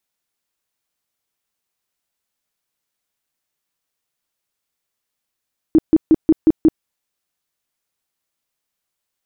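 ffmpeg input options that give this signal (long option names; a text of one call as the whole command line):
ffmpeg -f lavfi -i "aevalsrc='0.473*sin(2*PI*318*mod(t,0.18))*lt(mod(t,0.18),11/318)':duration=1.08:sample_rate=44100" out.wav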